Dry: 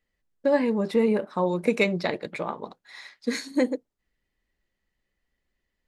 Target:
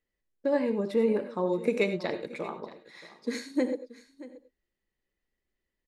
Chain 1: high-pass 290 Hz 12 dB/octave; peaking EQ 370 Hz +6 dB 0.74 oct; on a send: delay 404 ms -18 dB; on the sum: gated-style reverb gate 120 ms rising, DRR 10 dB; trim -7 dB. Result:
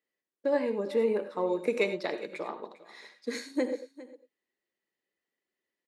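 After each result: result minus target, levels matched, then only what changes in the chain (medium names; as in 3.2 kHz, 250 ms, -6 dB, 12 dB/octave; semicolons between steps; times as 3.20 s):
echo 224 ms early; 250 Hz band -3.0 dB
change: delay 628 ms -18 dB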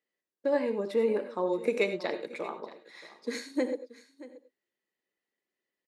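250 Hz band -3.0 dB
remove: high-pass 290 Hz 12 dB/octave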